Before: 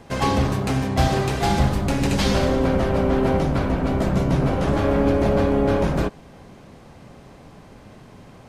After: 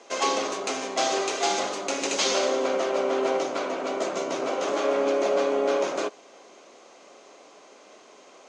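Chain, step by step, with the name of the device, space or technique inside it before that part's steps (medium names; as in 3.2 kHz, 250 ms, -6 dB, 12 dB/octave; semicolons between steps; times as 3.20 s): phone speaker on a table (cabinet simulation 390–7700 Hz, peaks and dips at 480 Hz -3 dB, 860 Hz -6 dB, 1.7 kHz -7 dB, 6.5 kHz +9 dB); trim +1 dB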